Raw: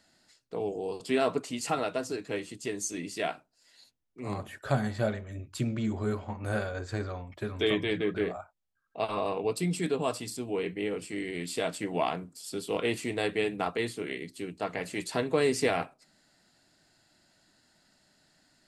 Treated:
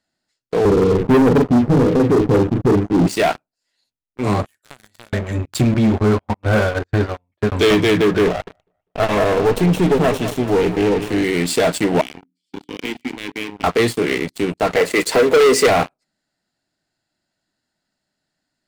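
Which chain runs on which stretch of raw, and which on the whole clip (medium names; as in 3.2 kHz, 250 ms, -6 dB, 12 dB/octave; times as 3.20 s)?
0.65–3.07 s: elliptic low-pass 510 Hz + tilt EQ -4.5 dB/octave + doubling 41 ms -5 dB
4.46–5.13 s: pre-emphasis filter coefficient 0.9 + compression 4:1, threshold -48 dBFS
5.74–7.52 s: low-pass 4.2 kHz + gate -36 dBFS, range -16 dB
8.27–11.24 s: comb filter that takes the minimum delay 0.31 ms + treble shelf 3.7 kHz -9.5 dB + feedback delay 199 ms, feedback 38%, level -13 dB
12.01–13.64 s: vowel filter i + hum notches 60/120/180/240/300/360/420 Hz
14.76–15.67 s: block-companded coder 7-bit + high-pass 240 Hz + small resonant body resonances 470/2000 Hz, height 10 dB, ringing for 25 ms
whole clip: treble shelf 3.3 kHz -3 dB; waveshaping leveller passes 5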